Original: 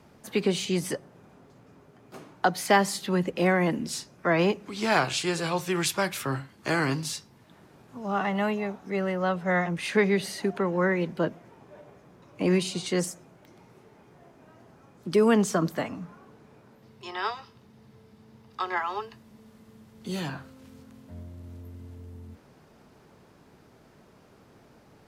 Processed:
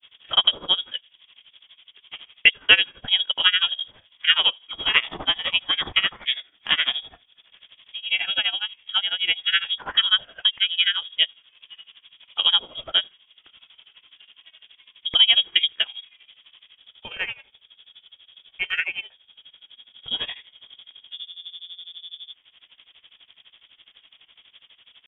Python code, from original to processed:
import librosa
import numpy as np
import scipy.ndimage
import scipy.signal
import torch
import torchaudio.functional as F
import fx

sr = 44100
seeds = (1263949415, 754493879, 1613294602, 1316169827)

y = fx.granulator(x, sr, seeds[0], grain_ms=114.0, per_s=12.0, spray_ms=22.0, spread_st=0)
y = fx.freq_invert(y, sr, carrier_hz=3500)
y = fx.transient(y, sr, attack_db=5, sustain_db=-6)
y = y * librosa.db_to_amplitude(4.0)